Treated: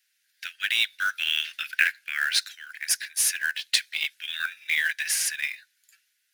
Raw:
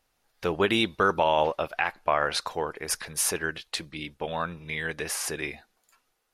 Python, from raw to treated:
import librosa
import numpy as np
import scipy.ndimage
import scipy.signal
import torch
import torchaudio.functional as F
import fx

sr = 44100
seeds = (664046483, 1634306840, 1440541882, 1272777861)

y = scipy.signal.sosfilt(scipy.signal.butter(16, 1500.0, 'highpass', fs=sr, output='sos'), x)
y = fx.rider(y, sr, range_db=5, speed_s=0.5)
y = fx.quant_float(y, sr, bits=2)
y = F.gain(torch.from_numpy(y), 7.0).numpy()